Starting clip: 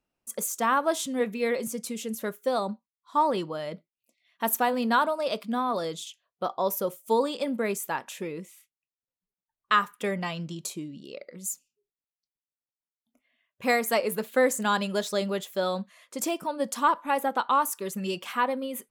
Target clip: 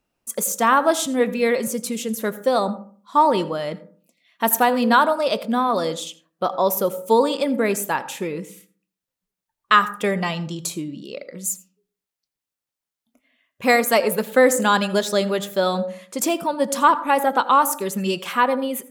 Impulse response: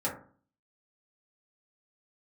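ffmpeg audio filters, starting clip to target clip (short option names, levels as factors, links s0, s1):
-filter_complex "[0:a]asplit=2[s0][s1];[1:a]atrim=start_sample=2205,adelay=79[s2];[s1][s2]afir=irnorm=-1:irlink=0,volume=0.0794[s3];[s0][s3]amix=inputs=2:normalize=0,volume=2.37"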